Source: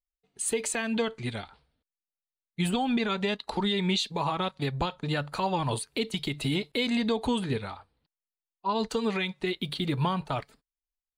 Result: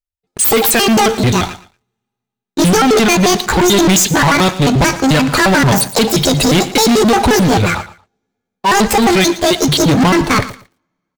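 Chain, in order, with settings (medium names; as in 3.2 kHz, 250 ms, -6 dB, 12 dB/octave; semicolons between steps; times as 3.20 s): pitch shift switched off and on +10 st, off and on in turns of 88 ms; bass shelf 240 Hz +5.5 dB; two-slope reverb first 0.47 s, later 2.5 s, from -17 dB, DRR 18.5 dB; waveshaping leveller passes 5; on a send: feedback delay 115 ms, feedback 20%, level -16 dB; on the sum: trim +7.5 dB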